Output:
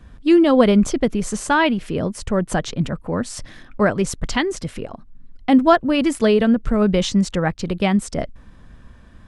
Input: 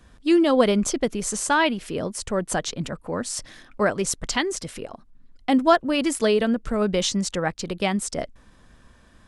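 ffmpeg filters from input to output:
ffmpeg -i in.wav -af "bass=frequency=250:gain=7,treble=frequency=4000:gain=-7,volume=3dB" out.wav

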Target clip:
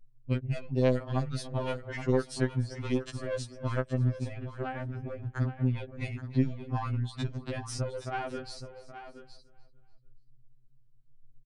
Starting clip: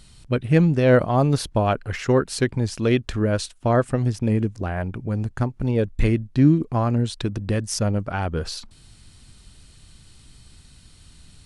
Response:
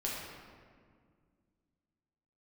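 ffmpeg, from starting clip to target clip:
-filter_complex "[0:a]aeval=exprs='0.562*(cos(1*acos(clip(val(0)/0.562,-1,1)))-cos(1*PI/2))+0.158*(cos(2*acos(clip(val(0)/0.562,-1,1)))-cos(2*PI/2))':channel_layout=same,aresample=22050,aresample=44100,anlmdn=63.1,asplit=2[link_01][link_02];[link_02]aecho=0:1:293|586|879:0.0631|0.029|0.0134[link_03];[link_01][link_03]amix=inputs=2:normalize=0,acrossover=split=100|2300|5400[link_04][link_05][link_06][link_07];[link_04]acompressor=threshold=-44dB:ratio=4[link_08];[link_05]acompressor=threshold=-29dB:ratio=4[link_09];[link_06]acompressor=threshold=-45dB:ratio=4[link_10];[link_07]acompressor=threshold=-44dB:ratio=4[link_11];[link_08][link_09][link_10][link_11]amix=inputs=4:normalize=0,asplit=2[link_12][link_13];[link_13]aecho=0:1:821:0.266[link_14];[link_12][link_14]amix=inputs=2:normalize=0,afftfilt=real='re*2.45*eq(mod(b,6),0)':imag='im*2.45*eq(mod(b,6),0)':win_size=2048:overlap=0.75"

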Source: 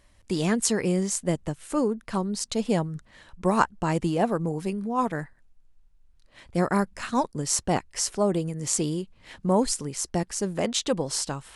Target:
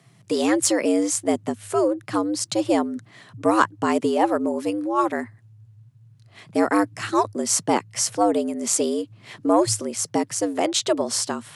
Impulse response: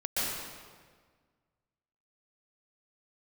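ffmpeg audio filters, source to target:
-af "acontrast=48,afreqshift=99,volume=-1.5dB"

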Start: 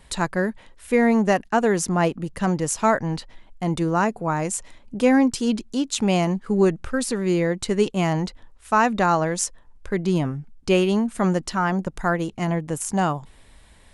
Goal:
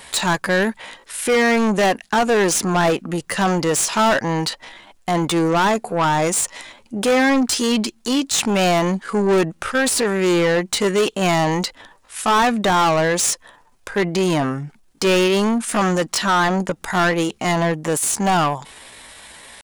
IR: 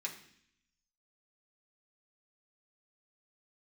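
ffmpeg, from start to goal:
-filter_complex "[0:a]crystalizer=i=1:c=0,asplit=2[link_01][link_02];[link_02]highpass=frequency=720:poles=1,volume=28dB,asoftclip=type=tanh:threshold=-2.5dB[link_03];[link_01][link_03]amix=inputs=2:normalize=0,lowpass=frequency=6300:poles=1,volume=-6dB,atempo=0.71,volume=-6dB"

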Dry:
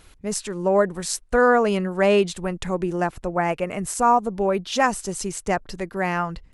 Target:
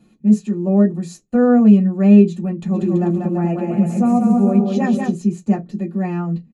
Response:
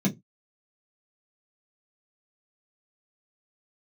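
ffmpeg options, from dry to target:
-filter_complex "[0:a]asplit=3[link_01][link_02][link_03];[link_01]afade=type=out:start_time=2.73:duration=0.02[link_04];[link_02]aecho=1:1:190|332.5|439.4|519.5|579.6:0.631|0.398|0.251|0.158|0.1,afade=type=in:start_time=2.73:duration=0.02,afade=type=out:start_time=5.09:duration=0.02[link_05];[link_03]afade=type=in:start_time=5.09:duration=0.02[link_06];[link_04][link_05][link_06]amix=inputs=3:normalize=0[link_07];[1:a]atrim=start_sample=2205,asetrate=48510,aresample=44100[link_08];[link_07][link_08]afir=irnorm=-1:irlink=0,volume=-14.5dB"

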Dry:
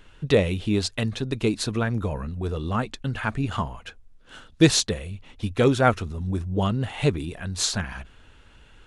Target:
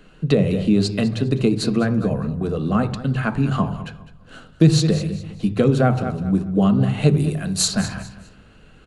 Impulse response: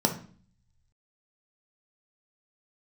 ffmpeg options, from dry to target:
-filter_complex "[0:a]asettb=1/sr,asplit=3[link_01][link_02][link_03];[link_01]atrim=end=7.084[link_04];[link_02]atrim=start=7.08:end=7.68,asetpts=PTS-STARTPTS,afade=type=in:duration=0.004:curve=qsin,afade=type=out:start_time=0.596:duration=0.004:curve=qsin,aemphasis=mode=production:type=50fm[link_05];[link_03]atrim=start=7.676[link_06];[link_04][link_05]acrossfade=duration=0.004:curve1=hsin:curve2=qsin[link_07];[link_07][link_06]acrossfade=duration=0.004:curve1=qsin:curve2=hsin,aecho=1:1:204|408|612:0.158|0.046|0.0133,asplit=2[link_08][link_09];[1:a]atrim=start_sample=2205,asetrate=37926,aresample=44100,lowpass=4500[link_10];[link_09][link_10]afir=irnorm=-1:irlink=0,volume=-13.5dB[link_11];[link_08][link_11]amix=inputs=2:normalize=0,acrossover=split=190[link_12][link_13];[link_13]acompressor=threshold=-15dB:ratio=10[link_14];[link_12][link_14]amix=inputs=2:normalize=0"

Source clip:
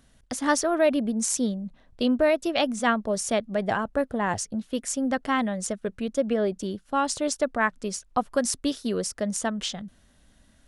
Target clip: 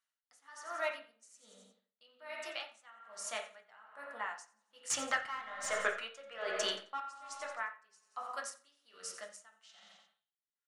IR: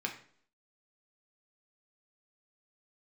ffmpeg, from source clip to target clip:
-filter_complex "[0:a]highpass=1400,agate=range=-15dB:threshold=-56dB:ratio=16:detection=peak,lowpass=10000,alimiter=limit=-17dB:level=0:latency=1:release=419,flanger=delay=2.6:depth=4.8:regen=-72:speed=1.4:shape=triangular,asettb=1/sr,asplit=3[link_01][link_02][link_03];[link_01]atrim=end=4.904[link_04];[link_02]atrim=start=4.9:end=7,asetpts=PTS-STARTPTS,afade=type=in:duration=0.004:curve=qsin,afade=type=out:start_time=2.096:duration=0.004:curve=qsin,asplit=2[link_05][link_06];[link_06]highpass=frequency=720:poles=1,volume=28dB,asoftclip=type=tanh:threshold=-9.5dB[link_07];[link_05][link_07]amix=inputs=2:normalize=0,lowpass=frequency=2800:poles=1,volume=-6dB[link_08];[link_03]atrim=start=6.996[link_09];[link_04][link_08]acrossfade=duration=0.004:curve1=hsin:curve2=qsin[link_10];[link_10][link_09]acrossfade=duration=0.004:curve1=qsin:curve2=hsin,aecho=1:1:88|176|264|352:0.188|0.0904|0.0434|0.0208[link_11];[1:a]atrim=start_sample=2205,asetrate=24696,aresample=44100[link_12];[link_11][link_12]afir=irnorm=-1:irlink=0,aeval=exprs='val(0)*pow(10,-24*(0.5-0.5*cos(2*PI*1.2*n/s))/20)':channel_layout=same,volume=-4.5dB"

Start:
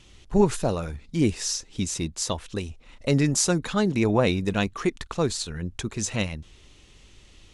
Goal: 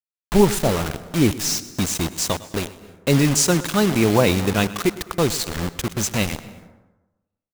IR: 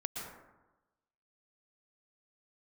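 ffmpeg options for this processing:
-filter_complex "[0:a]asettb=1/sr,asplit=3[link_01][link_02][link_03];[link_01]atrim=end=3.434[link_04];[link_02]atrim=start=3.43:end=4.85,asetpts=PTS-STARTPTS,afade=type=in:duration=0.004:curve=qsin,afade=type=out:start_time=1.416:duration=0.004:curve=qsin,highpass=frequency=48:width=0.5412,highpass=frequency=48:width=1.3066[link_05];[link_03]atrim=start=4.846[link_06];[link_04][link_05]acrossfade=duration=0.004:curve1=hsin:curve2=qsin[link_07];[link_07][link_06]acrossfade=duration=0.004:curve1=qsin:curve2=hsin,acrusher=bits=4:mix=0:aa=0.000001,aecho=1:1:104|208|312:0.1|0.045|0.0202,asplit=2[link_08][link_09];[1:a]atrim=start_sample=2205,adelay=123[link_10];[link_09][link_10]afir=irnorm=-1:irlink=0,volume=-18dB[link_11];[link_08][link_11]amix=inputs=2:normalize=0,volume=4.5dB"

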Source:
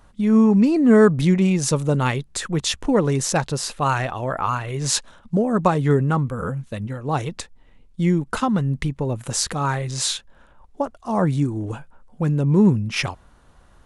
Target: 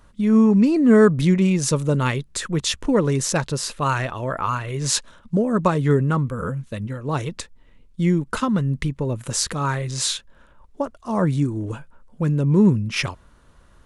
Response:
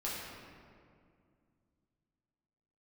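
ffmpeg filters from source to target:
-af "equalizer=frequency=770:width_type=o:width=0.22:gain=-10"

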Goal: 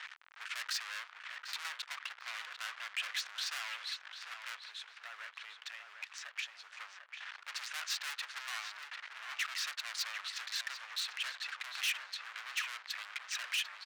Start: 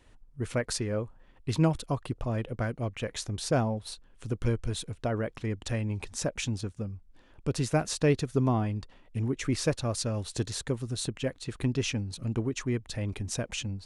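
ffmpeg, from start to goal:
ffmpeg -i in.wav -filter_complex "[0:a]aeval=exprs='val(0)+0.5*0.0119*sgn(val(0))':channel_layout=same,asettb=1/sr,asplit=3[link_01][link_02][link_03];[link_01]atrim=end=4.664[link_04];[link_02]atrim=start=4.66:end=6.73,asetpts=PTS-STARTPTS,afade=type=in:duration=0.004:curve=qsin,afade=type=out:start_time=2.066:duration=0.004:curve=qsin,acompressor=threshold=-37dB:ratio=4[link_05];[link_03]atrim=start=6.726[link_06];[link_04][link_05]acrossfade=duration=0.004:curve1=hsin:curve2=qsin[link_07];[link_07][link_06]acrossfade=duration=0.004:curve1=qsin:curve2=hsin,lowpass=8300,acrusher=bits=8:mix=0:aa=0.000001,adynamicsmooth=sensitivity=2.5:basefreq=2200,asoftclip=type=hard:threshold=-37.5dB,highpass=frequency=1400:width=0.5412,highpass=frequency=1400:width=1.3066,asplit=2[link_08][link_09];[link_09]adelay=746,lowpass=frequency=2600:poles=1,volume=-6dB,asplit=2[link_10][link_11];[link_11]adelay=746,lowpass=frequency=2600:poles=1,volume=0.38,asplit=2[link_12][link_13];[link_13]adelay=746,lowpass=frequency=2600:poles=1,volume=0.38,asplit=2[link_14][link_15];[link_15]adelay=746,lowpass=frequency=2600:poles=1,volume=0.38,asplit=2[link_16][link_17];[link_17]adelay=746,lowpass=frequency=2600:poles=1,volume=0.38[link_18];[link_08][link_10][link_12][link_14][link_16][link_18]amix=inputs=6:normalize=0,volume=8dB" out.wav

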